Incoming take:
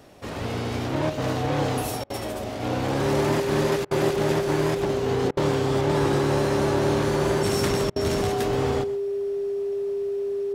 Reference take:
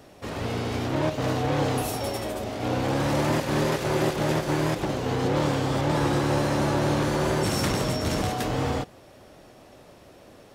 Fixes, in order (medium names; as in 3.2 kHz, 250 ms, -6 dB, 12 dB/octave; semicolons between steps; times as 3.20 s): band-stop 400 Hz, Q 30; interpolate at 2.04/3.85/5.31/7.90 s, 59 ms; inverse comb 127 ms -16 dB